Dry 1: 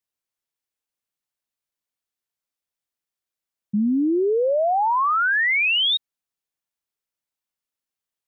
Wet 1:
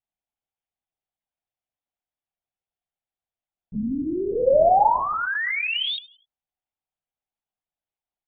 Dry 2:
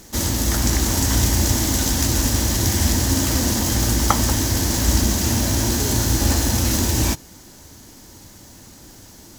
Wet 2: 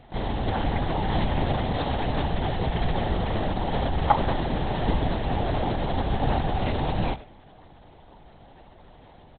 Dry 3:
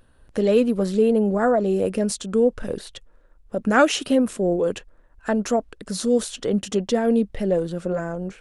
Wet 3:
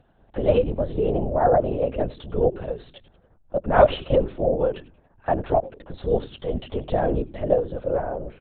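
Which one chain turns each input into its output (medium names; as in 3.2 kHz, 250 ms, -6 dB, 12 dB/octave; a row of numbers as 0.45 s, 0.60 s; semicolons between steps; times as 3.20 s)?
high-order bell 690 Hz +10 dB 1 oct; on a send: frequency-shifting echo 92 ms, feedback 32%, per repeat -120 Hz, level -18.5 dB; on the sum: LPC vocoder at 8 kHz whisper; trim -6 dB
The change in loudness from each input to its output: -2.0 LU, -8.0 LU, -1.5 LU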